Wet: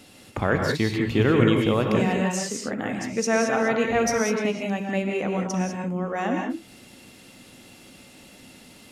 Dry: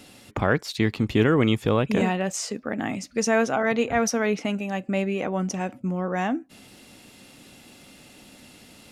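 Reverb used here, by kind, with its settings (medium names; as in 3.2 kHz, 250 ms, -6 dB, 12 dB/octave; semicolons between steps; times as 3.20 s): gated-style reverb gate 220 ms rising, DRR 1.5 dB; trim -1.5 dB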